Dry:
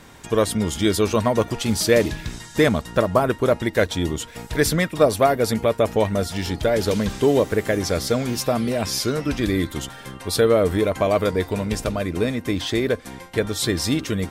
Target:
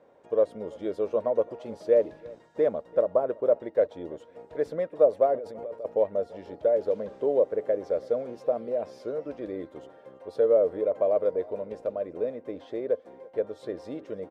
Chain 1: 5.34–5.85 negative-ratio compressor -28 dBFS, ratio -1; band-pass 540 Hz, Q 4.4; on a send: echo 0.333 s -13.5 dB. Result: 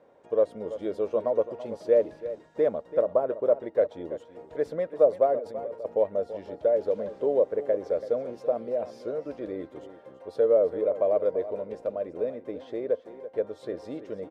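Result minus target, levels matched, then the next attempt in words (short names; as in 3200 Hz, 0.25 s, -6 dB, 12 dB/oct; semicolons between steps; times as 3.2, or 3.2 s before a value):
echo-to-direct +9.5 dB
5.34–5.85 negative-ratio compressor -28 dBFS, ratio -1; band-pass 540 Hz, Q 4.4; on a send: echo 0.333 s -23 dB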